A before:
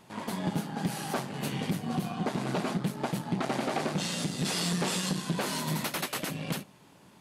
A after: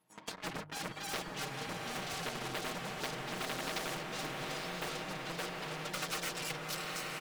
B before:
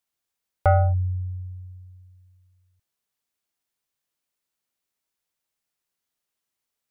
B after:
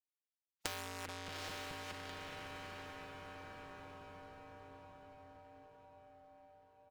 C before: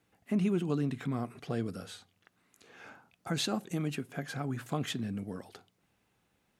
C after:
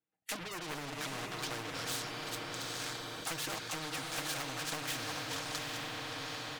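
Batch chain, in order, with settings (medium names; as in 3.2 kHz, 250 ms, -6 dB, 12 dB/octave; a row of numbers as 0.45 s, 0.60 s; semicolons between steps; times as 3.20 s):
backward echo that repeats 214 ms, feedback 57%, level -9.5 dB; treble shelf 7.3 kHz -5.5 dB; low-pass that closes with the level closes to 970 Hz, closed at -28 dBFS; in parallel at -12 dB: crossover distortion -41 dBFS; on the sum: spectral noise reduction 28 dB; waveshaping leveller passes 3; compression, threshold -24 dBFS; bass shelf 86 Hz -11 dB; hum notches 50/100/150 Hz; comb 6.4 ms, depth 48%; on a send: echo that smears into a reverb 827 ms, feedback 43%, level -7.5 dB; on the sum: spectrum-flattening compressor 4:1; trim -6 dB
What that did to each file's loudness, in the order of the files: -7.0 LU, -24.0 LU, -3.5 LU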